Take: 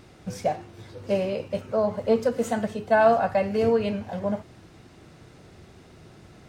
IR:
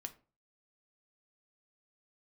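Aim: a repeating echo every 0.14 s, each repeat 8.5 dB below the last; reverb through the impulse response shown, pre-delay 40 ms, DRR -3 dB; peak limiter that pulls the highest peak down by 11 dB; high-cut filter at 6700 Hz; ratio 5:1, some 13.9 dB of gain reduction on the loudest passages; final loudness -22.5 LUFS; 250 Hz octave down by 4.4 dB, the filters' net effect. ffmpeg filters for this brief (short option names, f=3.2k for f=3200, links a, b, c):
-filter_complex "[0:a]lowpass=6.7k,equalizer=f=250:t=o:g=-5.5,acompressor=threshold=-31dB:ratio=5,alimiter=level_in=7dB:limit=-24dB:level=0:latency=1,volume=-7dB,aecho=1:1:140|280|420|560:0.376|0.143|0.0543|0.0206,asplit=2[a][b];[1:a]atrim=start_sample=2205,adelay=40[c];[b][c]afir=irnorm=-1:irlink=0,volume=6.5dB[d];[a][d]amix=inputs=2:normalize=0,volume=12.5dB"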